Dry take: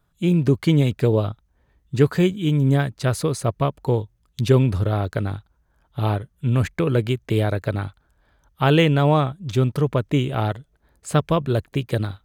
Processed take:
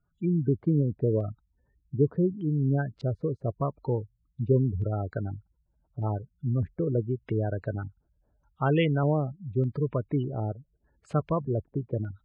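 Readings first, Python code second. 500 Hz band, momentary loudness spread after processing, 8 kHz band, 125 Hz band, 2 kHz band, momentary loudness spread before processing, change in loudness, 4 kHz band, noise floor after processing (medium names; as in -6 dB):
-7.0 dB, 10 LU, under -30 dB, -7.5 dB, -12.0 dB, 10 LU, -7.5 dB, -16.5 dB, -74 dBFS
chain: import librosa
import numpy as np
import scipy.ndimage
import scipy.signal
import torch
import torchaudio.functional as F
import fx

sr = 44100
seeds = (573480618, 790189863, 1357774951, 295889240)

y = fx.spec_gate(x, sr, threshold_db=-20, keep='strong')
y = fx.filter_lfo_lowpass(y, sr, shape='square', hz=0.83, low_hz=580.0, high_hz=3000.0, q=0.97)
y = y * 10.0 ** (-7.5 / 20.0)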